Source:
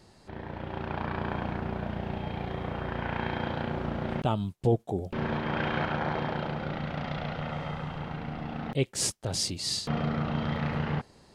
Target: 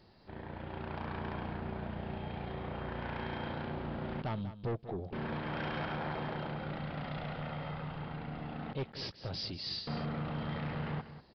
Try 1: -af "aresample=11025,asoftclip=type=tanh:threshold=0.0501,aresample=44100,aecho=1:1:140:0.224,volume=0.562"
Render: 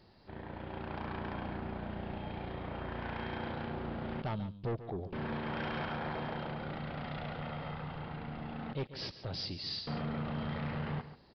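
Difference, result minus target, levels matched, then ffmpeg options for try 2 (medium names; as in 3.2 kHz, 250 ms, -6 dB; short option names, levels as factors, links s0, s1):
echo 51 ms early
-af "aresample=11025,asoftclip=type=tanh:threshold=0.0501,aresample=44100,aecho=1:1:191:0.224,volume=0.562"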